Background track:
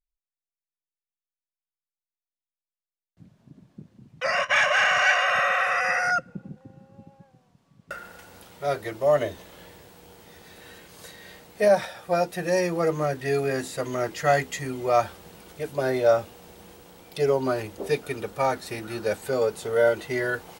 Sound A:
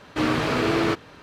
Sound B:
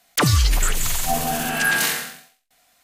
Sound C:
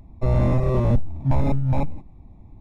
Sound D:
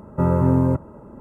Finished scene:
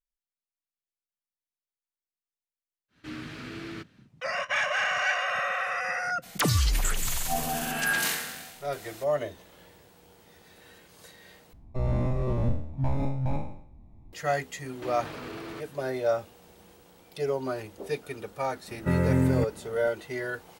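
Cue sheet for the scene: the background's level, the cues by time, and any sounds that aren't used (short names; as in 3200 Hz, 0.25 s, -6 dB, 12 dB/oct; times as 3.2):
background track -6.5 dB
2.88 add A -15 dB, fades 0.10 s + band shelf 690 Hz -10 dB
6.22 add B -7 dB, fades 0.02 s + upward compressor, threshold -23 dBFS
11.53 replace with C -9 dB + spectral trails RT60 0.62 s
14.66 add A -9 dB + limiter -22.5 dBFS
18.68 add D -5.5 dB + resonant high shelf 1500 Hz +11 dB, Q 3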